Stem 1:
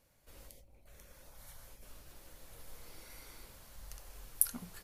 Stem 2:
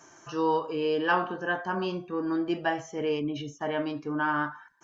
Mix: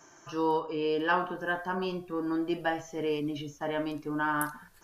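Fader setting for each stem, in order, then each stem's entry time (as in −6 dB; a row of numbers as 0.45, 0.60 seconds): −9.5, −2.0 decibels; 0.00, 0.00 seconds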